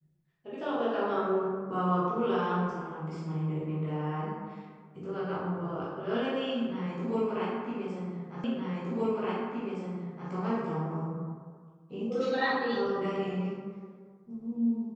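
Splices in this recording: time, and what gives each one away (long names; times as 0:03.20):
0:08.44: the same again, the last 1.87 s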